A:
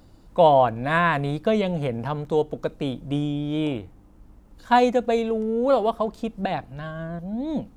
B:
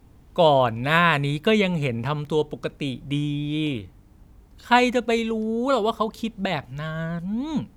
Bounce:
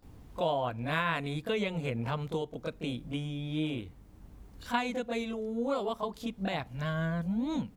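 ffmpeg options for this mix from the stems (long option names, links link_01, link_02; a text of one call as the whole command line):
ffmpeg -i stem1.wav -i stem2.wav -filter_complex "[0:a]alimiter=limit=-14dB:level=0:latency=1:release=249,volume=-14.5dB,asplit=2[link_01][link_02];[1:a]acompressor=threshold=-29dB:ratio=1.5,adelay=25,volume=-0.5dB[link_03];[link_02]apad=whole_len=343729[link_04];[link_03][link_04]sidechaincompress=threshold=-42dB:ratio=4:attack=41:release=1160[link_05];[link_01][link_05]amix=inputs=2:normalize=0" out.wav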